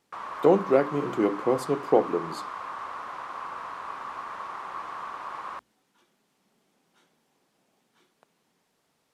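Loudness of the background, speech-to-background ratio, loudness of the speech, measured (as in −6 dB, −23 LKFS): −37.0 LKFS, 12.0 dB, −25.0 LKFS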